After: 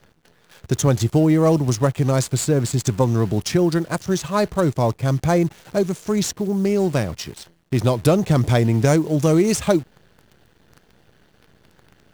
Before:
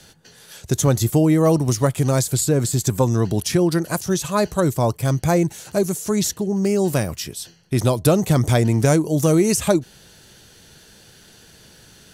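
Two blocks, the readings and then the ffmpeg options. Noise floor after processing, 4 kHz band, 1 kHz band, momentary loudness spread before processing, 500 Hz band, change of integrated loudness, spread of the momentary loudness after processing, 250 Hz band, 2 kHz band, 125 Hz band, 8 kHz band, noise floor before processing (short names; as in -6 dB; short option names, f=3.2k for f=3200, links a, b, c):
-58 dBFS, -1.0 dB, 0.0 dB, 6 LU, 0.0 dB, -0.5 dB, 6 LU, 0.0 dB, 0.0 dB, 0.0 dB, -4.0 dB, -49 dBFS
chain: -af "adynamicsmooth=sensitivity=5:basefreq=1.9k,acrusher=bits=8:dc=4:mix=0:aa=0.000001"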